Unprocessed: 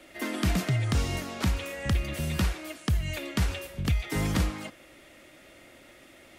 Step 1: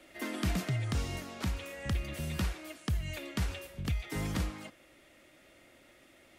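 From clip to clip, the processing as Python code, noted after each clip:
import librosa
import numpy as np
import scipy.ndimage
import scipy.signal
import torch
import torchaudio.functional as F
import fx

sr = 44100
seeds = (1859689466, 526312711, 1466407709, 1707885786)

y = fx.rider(x, sr, range_db=10, speed_s=2.0)
y = y * librosa.db_to_amplitude(-7.0)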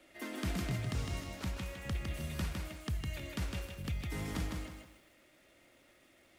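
y = fx.echo_crushed(x, sr, ms=157, feedback_pct=35, bits=10, wet_db=-3.5)
y = y * librosa.db_to_amplitude(-5.0)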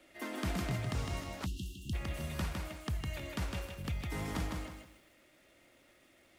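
y = fx.spec_erase(x, sr, start_s=1.46, length_s=0.47, low_hz=380.0, high_hz=2600.0)
y = fx.dynamic_eq(y, sr, hz=880.0, q=0.95, threshold_db=-56.0, ratio=4.0, max_db=5)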